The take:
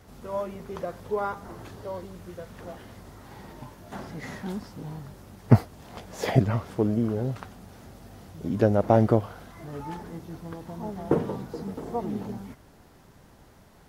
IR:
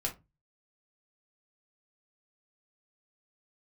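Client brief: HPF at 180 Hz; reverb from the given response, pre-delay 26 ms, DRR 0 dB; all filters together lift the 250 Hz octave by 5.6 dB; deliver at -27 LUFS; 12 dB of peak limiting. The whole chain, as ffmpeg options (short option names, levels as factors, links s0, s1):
-filter_complex "[0:a]highpass=180,equalizer=f=250:t=o:g=8.5,alimiter=limit=0.251:level=0:latency=1,asplit=2[s0][s1];[1:a]atrim=start_sample=2205,adelay=26[s2];[s1][s2]afir=irnorm=-1:irlink=0,volume=0.708[s3];[s0][s3]amix=inputs=2:normalize=0,volume=0.891"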